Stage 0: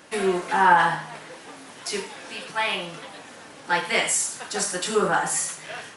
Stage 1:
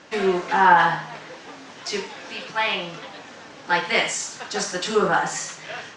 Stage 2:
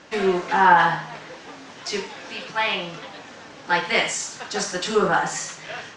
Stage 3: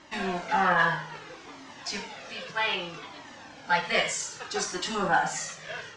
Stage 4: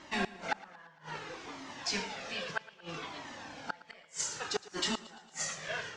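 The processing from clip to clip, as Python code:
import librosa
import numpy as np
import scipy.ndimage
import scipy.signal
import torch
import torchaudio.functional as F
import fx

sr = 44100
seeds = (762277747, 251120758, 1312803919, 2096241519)

y1 = scipy.signal.sosfilt(scipy.signal.butter(6, 6800.0, 'lowpass', fs=sr, output='sos'), x)
y1 = F.gain(torch.from_numpy(y1), 2.0).numpy()
y2 = fx.low_shelf(y1, sr, hz=72.0, db=6.5)
y3 = fx.comb_cascade(y2, sr, direction='falling', hz=0.62)
y4 = fx.gate_flip(y3, sr, shuts_db=-20.0, range_db=-33)
y4 = fx.echo_feedback(y4, sr, ms=114, feedback_pct=56, wet_db=-18.5)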